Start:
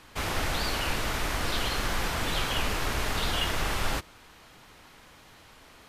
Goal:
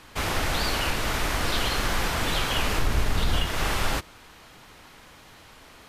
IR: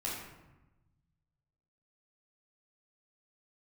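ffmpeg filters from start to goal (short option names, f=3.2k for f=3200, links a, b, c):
-filter_complex "[0:a]asettb=1/sr,asplit=3[a][b][c];[a]atrim=end=2.784[d];[b]atrim=start=2.78:end=3.46,asetpts=PTS-STARTPTS,afade=t=in:d=0.004:c=qsin,afade=t=out:st=0.676:d=0.004:c=qsin,lowshelf=f=250:g=10[e];[c]atrim=start=3.456[f];[d][e]acrossfade=d=0.004:c1=hsin:c2=qsin[g];[g][f]acrossfade=d=0.004:c1=qsin:c2=hsin,alimiter=limit=-17dB:level=0:latency=1:release=209,volume=3.5dB"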